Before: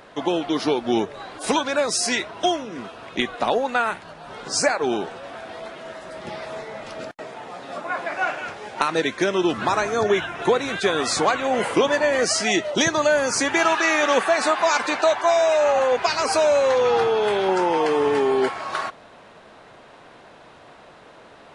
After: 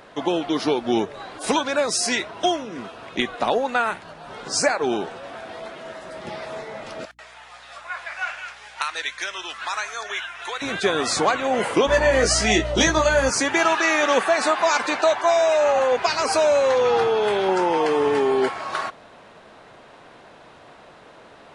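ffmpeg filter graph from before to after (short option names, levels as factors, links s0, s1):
-filter_complex "[0:a]asettb=1/sr,asplit=3[s0][s1][s2];[s0]atrim=end=7.054[s3];[s1]atrim=start=7.05:end=10.62,asetpts=PTS-STARTPTS,afade=t=in:d=0.004:c=qsin,afade=t=out:st=3.566:d=0.004:c=qsin,highpass=1400,aeval=exprs='val(0)+0.000794*(sin(2*PI*60*n/s)+sin(2*PI*2*60*n/s)/2+sin(2*PI*3*60*n/s)/3+sin(2*PI*4*60*n/s)/4+sin(2*PI*5*60*n/s)/5)':c=same[s4];[s2]atrim=start=10.616[s5];[s3][s4]acrossfade=d=0.004:c1=hsin:c2=qsin[s6];[s6][s5]acrossfade=d=0.004:c1=qsin:c2=hsin,asettb=1/sr,asplit=3[s7][s8][s9];[s7]atrim=end=11.874[s10];[s8]atrim=start=11.87:end=13.3,asetpts=PTS-STARTPTS,afade=t=in:d=0.004:c=qsin,afade=t=out:st=1.426:d=0.004:c=qsin,aeval=exprs='val(0)+0.0282*(sin(2*PI*60*n/s)+sin(2*PI*2*60*n/s)/2+sin(2*PI*3*60*n/s)/3+sin(2*PI*4*60*n/s)/4+sin(2*PI*5*60*n/s)/5)':c=same,asplit=2[s11][s12];[s12]adelay=19,volume=0.708[s13];[s11][s13]amix=inputs=2:normalize=0,atrim=end_sample=63063[s14];[s9]atrim=start=13.296[s15];[s10][s14]acrossfade=d=0.004:c1=hsin:c2=qsin[s16];[s16][s15]acrossfade=d=0.004:c1=qsin:c2=hsin"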